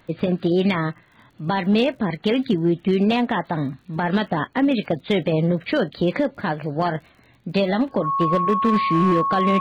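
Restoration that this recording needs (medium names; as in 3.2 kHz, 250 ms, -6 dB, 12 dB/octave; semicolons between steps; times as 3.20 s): clip repair -12 dBFS; de-click; band-stop 1.1 kHz, Q 30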